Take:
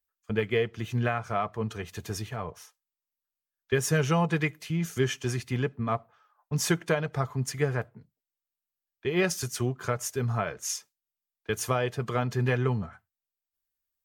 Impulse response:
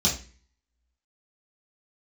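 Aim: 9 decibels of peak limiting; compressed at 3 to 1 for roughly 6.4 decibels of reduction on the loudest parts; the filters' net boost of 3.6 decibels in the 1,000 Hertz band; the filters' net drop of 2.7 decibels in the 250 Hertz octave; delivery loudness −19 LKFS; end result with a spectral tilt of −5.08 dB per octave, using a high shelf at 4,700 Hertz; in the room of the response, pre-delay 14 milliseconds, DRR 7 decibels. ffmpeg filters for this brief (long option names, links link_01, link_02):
-filter_complex "[0:a]equalizer=frequency=250:width_type=o:gain=-5,equalizer=frequency=1000:width_type=o:gain=5.5,highshelf=frequency=4700:gain=-4,acompressor=threshold=-29dB:ratio=3,alimiter=limit=-23dB:level=0:latency=1,asplit=2[link_01][link_02];[1:a]atrim=start_sample=2205,adelay=14[link_03];[link_02][link_03]afir=irnorm=-1:irlink=0,volume=-18dB[link_04];[link_01][link_04]amix=inputs=2:normalize=0,volume=14dB"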